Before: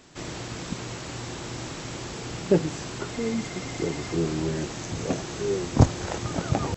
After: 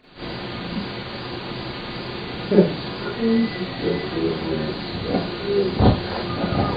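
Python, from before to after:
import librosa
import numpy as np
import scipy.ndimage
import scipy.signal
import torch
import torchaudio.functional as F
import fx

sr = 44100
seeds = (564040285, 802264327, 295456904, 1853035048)

y = fx.freq_compress(x, sr, knee_hz=1700.0, ratio=1.5)
y = fx.wow_flutter(y, sr, seeds[0], rate_hz=2.1, depth_cents=40.0)
y = fx.rev_schroeder(y, sr, rt60_s=0.31, comb_ms=31, drr_db=-9.0)
y = F.gain(torch.from_numpy(y), -3.5).numpy()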